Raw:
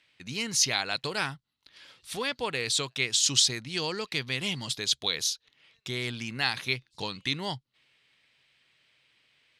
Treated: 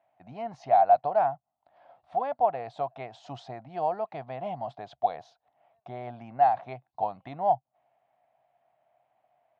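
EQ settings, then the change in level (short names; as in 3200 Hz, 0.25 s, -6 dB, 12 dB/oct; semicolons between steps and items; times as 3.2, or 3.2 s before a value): HPF 72 Hz; synth low-pass 710 Hz, resonance Q 7.5; resonant low shelf 550 Hz -6.5 dB, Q 3; 0.0 dB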